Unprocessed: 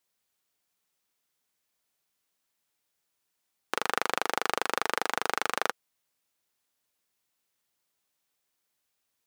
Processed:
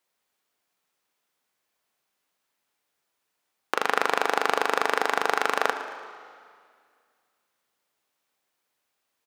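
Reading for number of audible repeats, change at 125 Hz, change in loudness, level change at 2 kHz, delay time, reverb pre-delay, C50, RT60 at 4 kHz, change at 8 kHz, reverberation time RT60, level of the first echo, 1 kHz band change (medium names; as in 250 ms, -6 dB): 2, no reading, +5.0 dB, +5.0 dB, 113 ms, 5 ms, 8.5 dB, 2.0 s, 0.0 dB, 2.1 s, -14.5 dB, +6.0 dB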